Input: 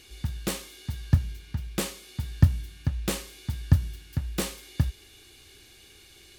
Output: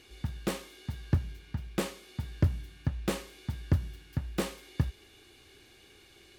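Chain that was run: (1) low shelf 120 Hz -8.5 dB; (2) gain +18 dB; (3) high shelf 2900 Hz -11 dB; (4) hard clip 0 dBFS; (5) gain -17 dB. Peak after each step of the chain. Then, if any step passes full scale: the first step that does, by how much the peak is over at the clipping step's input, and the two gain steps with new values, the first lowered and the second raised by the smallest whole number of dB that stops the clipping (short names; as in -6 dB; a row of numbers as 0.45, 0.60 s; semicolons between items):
-8.5, +9.5, +9.5, 0.0, -17.0 dBFS; step 2, 9.5 dB; step 2 +8 dB, step 5 -7 dB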